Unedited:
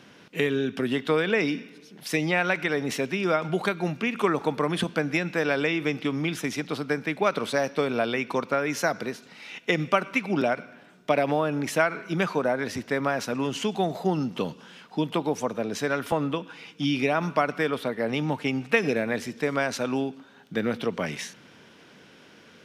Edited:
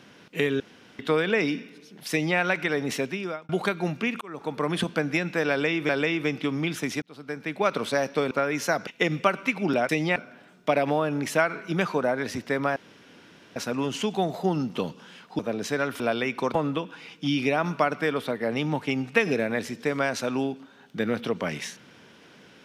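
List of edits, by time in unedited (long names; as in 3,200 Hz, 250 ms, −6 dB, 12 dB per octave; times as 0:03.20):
0:00.60–0:00.99: fill with room tone
0:02.11–0:02.38: duplicate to 0:10.57
0:03.00–0:03.49: fade out
0:04.21–0:04.71: fade in
0:05.50–0:05.89: repeat, 2 plays
0:06.63–0:07.30: fade in
0:07.92–0:08.46: move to 0:16.11
0:09.02–0:09.55: remove
0:13.17: splice in room tone 0.80 s
0:15.00–0:15.50: remove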